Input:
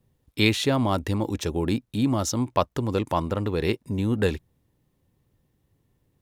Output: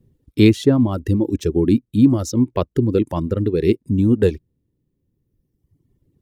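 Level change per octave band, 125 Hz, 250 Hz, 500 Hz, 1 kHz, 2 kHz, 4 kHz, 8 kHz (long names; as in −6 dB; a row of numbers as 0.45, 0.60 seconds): +7.5, +9.5, +7.0, −4.0, −2.5, −3.0, −1.5 decibels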